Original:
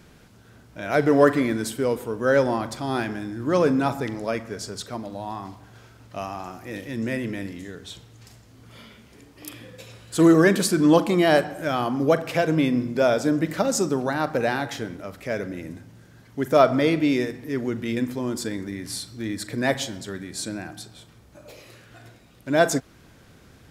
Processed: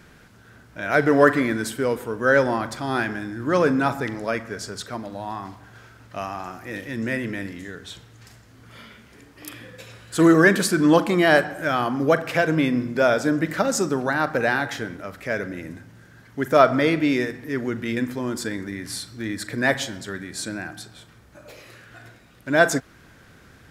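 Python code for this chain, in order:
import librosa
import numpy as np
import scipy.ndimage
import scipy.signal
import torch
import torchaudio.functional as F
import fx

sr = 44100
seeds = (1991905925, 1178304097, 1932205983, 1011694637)

y = fx.peak_eq(x, sr, hz=1600.0, db=7.0, octaves=0.9)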